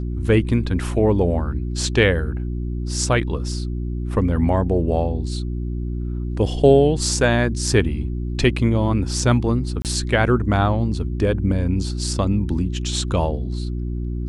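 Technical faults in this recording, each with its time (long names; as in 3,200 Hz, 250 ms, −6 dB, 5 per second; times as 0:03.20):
mains hum 60 Hz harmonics 6 −25 dBFS
0:09.82–0:09.85: drop-out 28 ms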